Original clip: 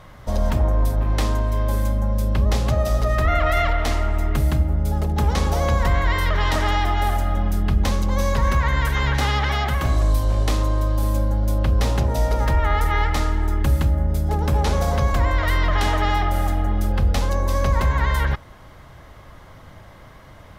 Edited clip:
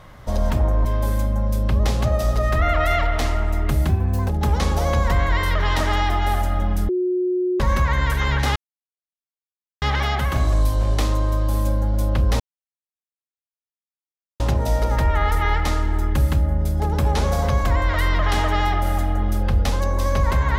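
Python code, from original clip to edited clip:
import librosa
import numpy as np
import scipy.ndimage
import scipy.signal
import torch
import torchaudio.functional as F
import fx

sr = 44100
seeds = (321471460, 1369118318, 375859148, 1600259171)

y = fx.edit(x, sr, fx.cut(start_s=0.85, length_s=0.66),
    fx.speed_span(start_s=4.55, length_s=0.49, speed=1.23),
    fx.bleep(start_s=7.64, length_s=0.71, hz=363.0, db=-18.0),
    fx.insert_silence(at_s=9.31, length_s=1.26),
    fx.insert_silence(at_s=11.89, length_s=2.0), tone=tone)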